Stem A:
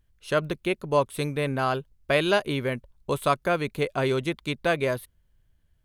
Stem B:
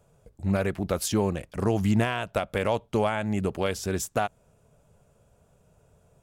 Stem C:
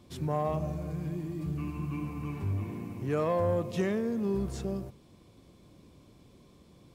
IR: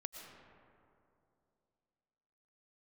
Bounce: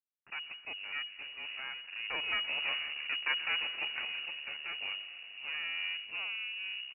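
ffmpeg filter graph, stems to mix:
-filter_complex "[0:a]lowpass=4700,aeval=exprs='val(0)*gte(abs(val(0)),0.0119)':channel_layout=same,volume=-3dB,afade=type=in:start_time=2.02:duration=0.47:silence=0.266073,afade=type=out:start_time=3.59:duration=0.53:silence=0.237137,asplit=3[link_01][link_02][link_03];[link_02]volume=-7dB[link_04];[1:a]adelay=300,volume=-8.5dB[link_05];[2:a]adelay=2350,volume=-7dB[link_06];[link_03]apad=whole_len=287924[link_07];[link_05][link_07]sidechaincompress=threshold=-48dB:ratio=8:attack=16:release=413[link_08];[link_01][link_08]amix=inputs=2:normalize=0,agate=range=-8dB:threshold=-55dB:ratio=16:detection=peak,acompressor=threshold=-35dB:ratio=2,volume=0dB[link_09];[3:a]atrim=start_sample=2205[link_10];[link_04][link_10]afir=irnorm=-1:irlink=0[link_11];[link_06][link_09][link_11]amix=inputs=3:normalize=0,acompressor=mode=upward:threshold=-40dB:ratio=2.5,aeval=exprs='max(val(0),0)':channel_layout=same,lowpass=frequency=2500:width_type=q:width=0.5098,lowpass=frequency=2500:width_type=q:width=0.6013,lowpass=frequency=2500:width_type=q:width=0.9,lowpass=frequency=2500:width_type=q:width=2.563,afreqshift=-2900"

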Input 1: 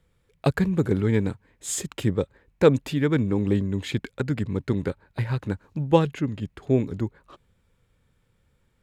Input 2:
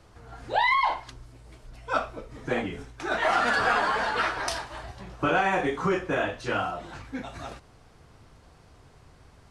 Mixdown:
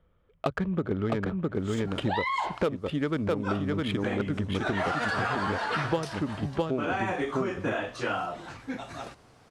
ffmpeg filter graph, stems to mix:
ffmpeg -i stem1.wav -i stem2.wav -filter_complex "[0:a]equalizer=frequency=125:width_type=o:width=0.33:gain=-9,equalizer=frequency=630:width_type=o:width=0.33:gain=7,equalizer=frequency=1250:width_type=o:width=0.33:gain=9,equalizer=frequency=3150:width_type=o:width=0.33:gain=9,adynamicsmooth=sensitivity=1.5:basefreq=1800,volume=0.5dB,asplit=2[link_01][link_02];[link_02]volume=-4dB[link_03];[1:a]highpass=110,adelay=1550,volume=0dB[link_04];[link_03]aecho=0:1:659:1[link_05];[link_01][link_04][link_05]amix=inputs=3:normalize=0,acompressor=threshold=-25dB:ratio=6" out.wav

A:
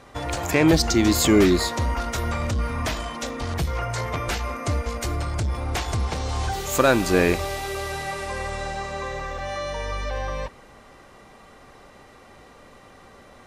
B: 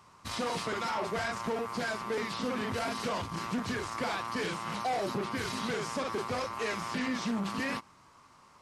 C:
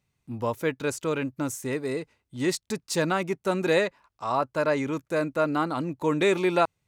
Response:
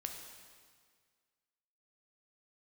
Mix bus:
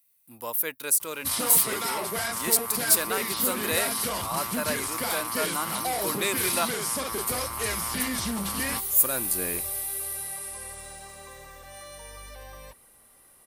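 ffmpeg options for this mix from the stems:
-filter_complex "[0:a]equalizer=frequency=9800:width=2.1:gain=7.5,adelay=2250,volume=-16.5dB[link_01];[1:a]bandreject=frequency=2600:width=22,adelay=1000,volume=0.5dB[link_02];[2:a]highpass=frequency=770:poles=1,volume=-4dB,asplit=2[link_03][link_04];[link_04]apad=whole_len=693112[link_05];[link_01][link_05]sidechaincompress=threshold=-46dB:ratio=8:attack=16:release=407[link_06];[link_06][link_02][link_03]amix=inputs=3:normalize=0,highshelf=frequency=3500:gain=11.5,aexciter=amount=10:drive=2.6:freq=9400"

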